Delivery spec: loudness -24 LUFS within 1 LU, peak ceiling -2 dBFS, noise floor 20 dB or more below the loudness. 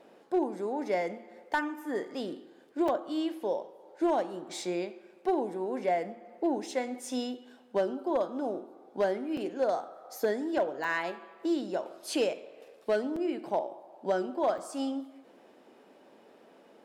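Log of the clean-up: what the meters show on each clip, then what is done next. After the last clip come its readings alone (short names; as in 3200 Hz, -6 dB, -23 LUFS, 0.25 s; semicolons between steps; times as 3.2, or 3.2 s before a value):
clipped 0.3%; flat tops at -20.0 dBFS; dropouts 5; longest dropout 4.1 ms; loudness -32.5 LUFS; peak -20.0 dBFS; loudness target -24.0 LUFS
-> clip repair -20 dBFS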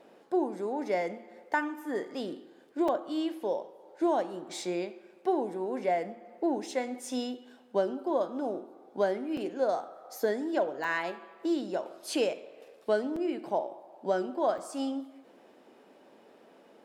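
clipped 0.0%; dropouts 5; longest dropout 4.1 ms
-> interpolate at 2.88/9.37/10.84/13.16/14.58, 4.1 ms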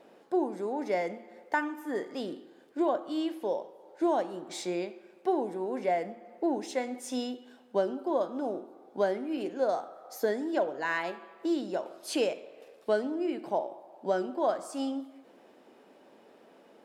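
dropouts 0; loudness -32.5 LUFS; peak -15.5 dBFS; loudness target -24.0 LUFS
-> gain +8.5 dB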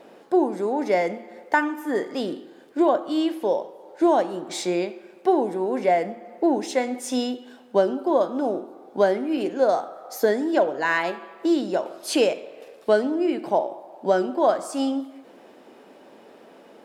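loudness -24.0 LUFS; peak -7.0 dBFS; noise floor -50 dBFS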